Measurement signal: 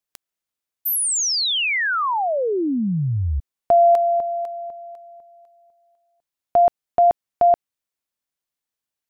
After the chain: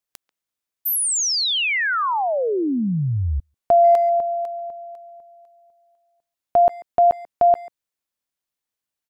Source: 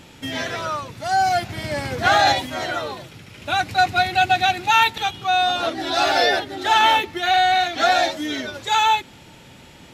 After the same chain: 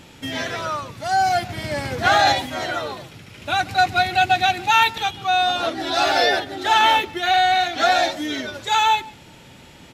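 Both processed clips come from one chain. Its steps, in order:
far-end echo of a speakerphone 140 ms, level −20 dB

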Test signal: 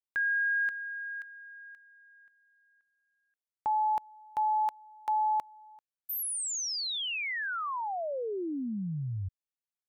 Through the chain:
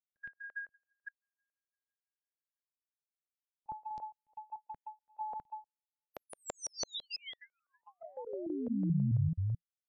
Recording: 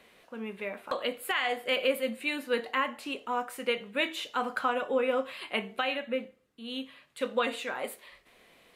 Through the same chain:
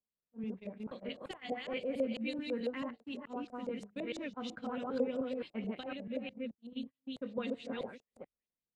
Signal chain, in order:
delay that plays each chunk backwards 217 ms, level −0.5 dB
drawn EQ curve 170 Hz 0 dB, 1,200 Hz −25 dB, 3,000 Hz −17 dB, 13,000 Hz +14 dB
auto-filter low-pass saw up 6 Hz 560–6,500 Hz
noise gate −45 dBFS, range −35 dB
high-frequency loss of the air 120 metres
level +2 dB

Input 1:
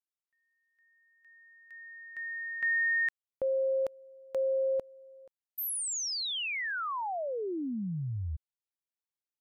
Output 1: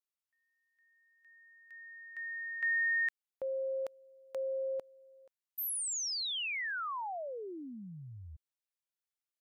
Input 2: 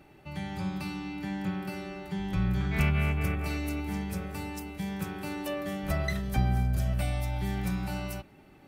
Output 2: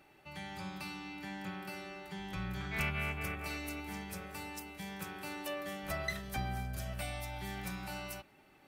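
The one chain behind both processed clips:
low-shelf EQ 420 Hz −12 dB
level −2 dB

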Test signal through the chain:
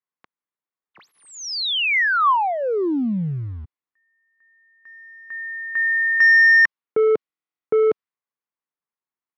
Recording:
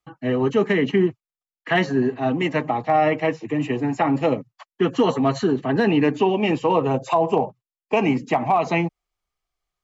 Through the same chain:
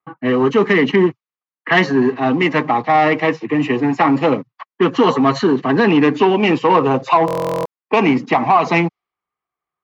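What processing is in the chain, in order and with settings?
leveller curve on the samples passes 1
low-pass that shuts in the quiet parts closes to 1,700 Hz, open at −13.5 dBFS
loudspeaker in its box 160–6,100 Hz, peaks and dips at 620 Hz −5 dB, 1,100 Hz +6 dB, 2,000 Hz +3 dB
buffer that repeats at 0:07.26, samples 1,024, times 16
level +4 dB

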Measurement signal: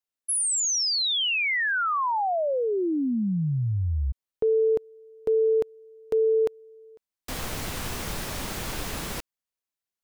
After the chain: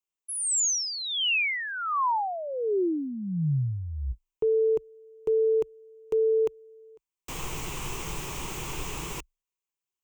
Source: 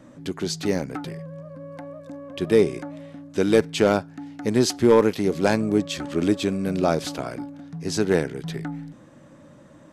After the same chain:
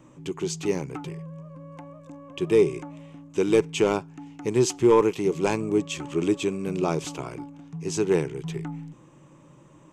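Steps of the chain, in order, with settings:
EQ curve with evenly spaced ripples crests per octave 0.71, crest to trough 10 dB
level −4 dB

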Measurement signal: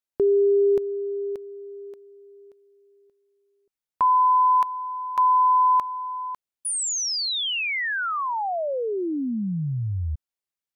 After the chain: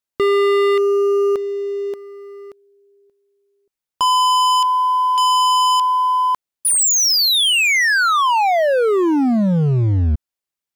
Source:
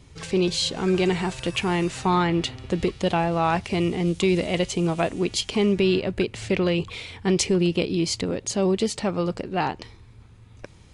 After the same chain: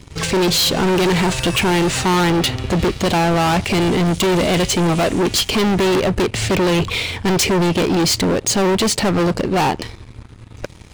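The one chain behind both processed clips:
leveller curve on the samples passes 2
gain into a clipping stage and back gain 21.5 dB
level +7.5 dB

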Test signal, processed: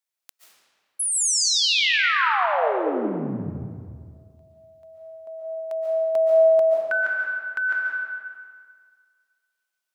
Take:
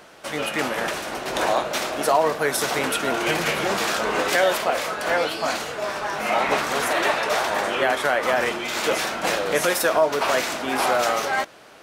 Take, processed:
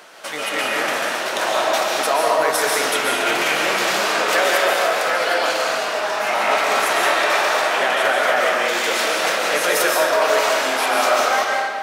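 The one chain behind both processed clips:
high-pass filter 670 Hz 6 dB per octave
in parallel at −2 dB: downward compressor, threshold −35 dBFS
on the sum: comb and all-pass reverb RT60 1.9 s, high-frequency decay 0.75×, pre-delay 100 ms, DRR −3 dB

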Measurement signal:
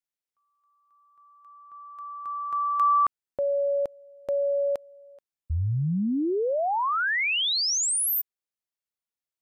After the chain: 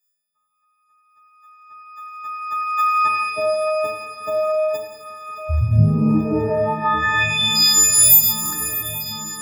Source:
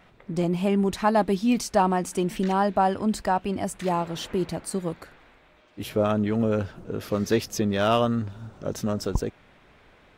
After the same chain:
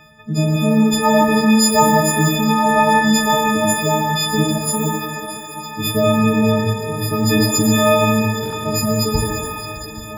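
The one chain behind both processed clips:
every partial snapped to a pitch grid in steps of 6 semitones
parametric band 130 Hz +10.5 dB 1.6 octaves
on a send: feedback echo with a long and a short gap by turns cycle 826 ms, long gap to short 3 to 1, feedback 68%, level −14 dB
on the sum: reverb reduction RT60 1.4 s
parametric band 10,000 Hz −7 dB 0.28 octaves
mains-hum notches 60/120 Hz
buffer that repeats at 0:08.41, samples 1,024, times 4
reverb with rising layers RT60 1.4 s, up +12 semitones, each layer −8 dB, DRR 2 dB
level +3 dB

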